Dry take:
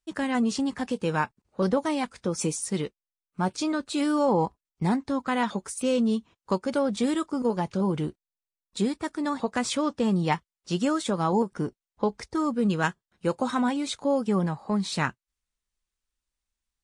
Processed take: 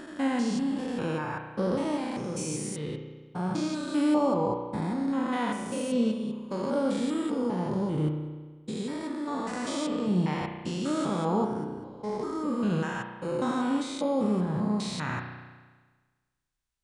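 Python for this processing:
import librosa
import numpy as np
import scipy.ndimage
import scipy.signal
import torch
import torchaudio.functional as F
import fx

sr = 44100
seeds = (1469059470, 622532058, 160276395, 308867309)

y = fx.spec_steps(x, sr, hold_ms=200)
y = fx.rev_spring(y, sr, rt60_s=1.4, pass_ms=(33,), chirp_ms=60, drr_db=4.5)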